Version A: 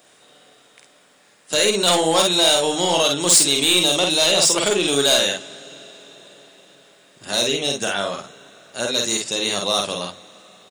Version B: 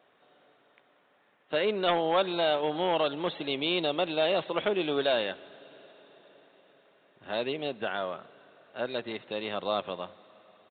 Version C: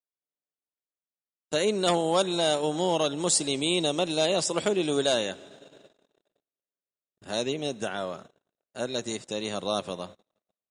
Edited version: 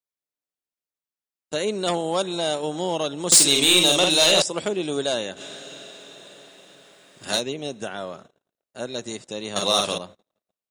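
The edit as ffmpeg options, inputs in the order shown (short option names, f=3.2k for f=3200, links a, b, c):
-filter_complex "[0:a]asplit=3[a][b][c];[2:a]asplit=4[d][e][f][g];[d]atrim=end=3.322[h];[a]atrim=start=3.318:end=4.422[i];[e]atrim=start=4.418:end=5.42[j];[b]atrim=start=5.36:end=7.41[k];[f]atrim=start=7.35:end=9.562[l];[c]atrim=start=9.558:end=9.982[m];[g]atrim=start=9.978[n];[h][i]acrossfade=d=0.004:c1=hsin:c2=hsin[o];[o][j]acrossfade=d=0.004:c1=hsin:c2=hsin[p];[p][k]acrossfade=d=0.06:c1=tri:c2=tri[q];[q][l]acrossfade=d=0.06:c1=tri:c2=tri[r];[r][m]acrossfade=d=0.004:c1=hsin:c2=hsin[s];[s][n]acrossfade=d=0.004:c1=hsin:c2=hsin"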